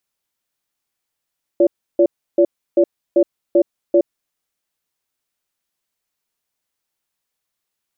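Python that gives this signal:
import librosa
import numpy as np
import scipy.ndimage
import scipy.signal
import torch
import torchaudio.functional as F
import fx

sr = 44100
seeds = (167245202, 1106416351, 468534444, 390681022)

y = fx.cadence(sr, length_s=2.72, low_hz=346.0, high_hz=572.0, on_s=0.07, off_s=0.32, level_db=-11.5)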